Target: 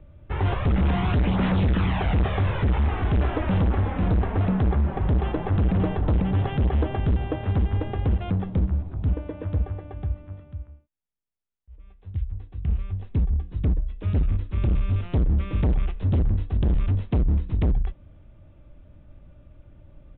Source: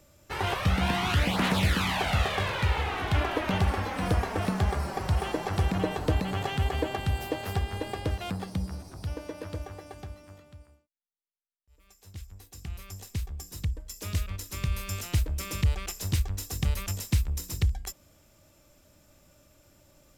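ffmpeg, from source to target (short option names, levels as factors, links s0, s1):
-af "aemphasis=mode=reproduction:type=riaa,aresample=8000,asoftclip=type=hard:threshold=0.126,aresample=44100"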